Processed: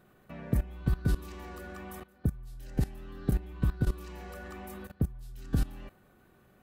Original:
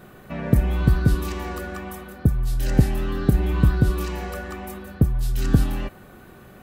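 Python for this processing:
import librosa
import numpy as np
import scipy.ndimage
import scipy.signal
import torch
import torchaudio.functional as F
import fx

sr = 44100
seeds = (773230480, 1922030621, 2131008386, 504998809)

y = fx.level_steps(x, sr, step_db=19)
y = y * librosa.db_to_amplitude(-5.0)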